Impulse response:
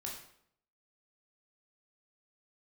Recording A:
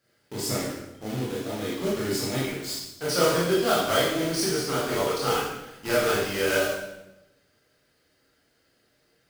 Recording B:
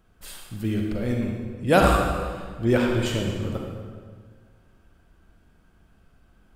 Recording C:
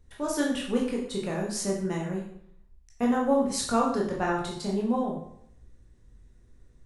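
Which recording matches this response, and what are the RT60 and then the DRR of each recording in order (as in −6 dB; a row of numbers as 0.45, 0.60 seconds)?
C; 0.95, 1.7, 0.65 seconds; −7.0, 0.5, −2.5 decibels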